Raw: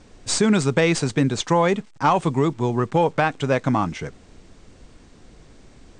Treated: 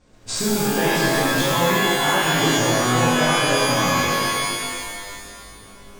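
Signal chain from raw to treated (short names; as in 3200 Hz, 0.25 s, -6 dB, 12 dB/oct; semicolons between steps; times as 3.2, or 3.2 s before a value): chorus 0.38 Hz, delay 18 ms, depth 4.7 ms; sample leveller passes 1; compressor, threshold -20 dBFS, peak gain reduction 7.5 dB; shimmer reverb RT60 2.1 s, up +12 st, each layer -2 dB, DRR -6.5 dB; gain -5 dB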